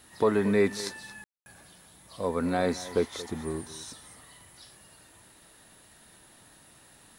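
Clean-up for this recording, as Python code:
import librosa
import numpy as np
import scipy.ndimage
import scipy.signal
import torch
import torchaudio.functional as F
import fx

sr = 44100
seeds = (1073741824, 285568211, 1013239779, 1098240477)

y = fx.fix_ambience(x, sr, seeds[0], print_start_s=5.52, print_end_s=6.02, start_s=1.24, end_s=1.46)
y = fx.fix_echo_inverse(y, sr, delay_ms=227, level_db=-16.5)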